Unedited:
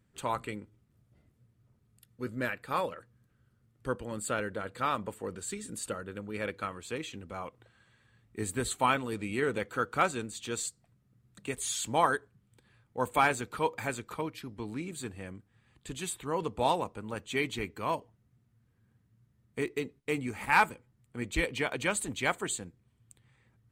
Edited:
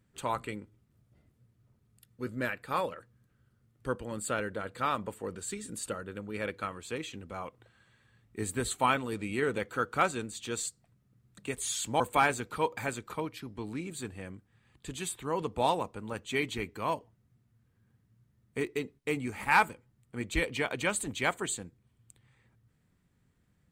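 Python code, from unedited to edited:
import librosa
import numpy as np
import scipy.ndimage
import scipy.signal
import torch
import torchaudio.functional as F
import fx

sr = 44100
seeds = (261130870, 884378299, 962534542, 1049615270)

y = fx.edit(x, sr, fx.cut(start_s=12.0, length_s=1.01), tone=tone)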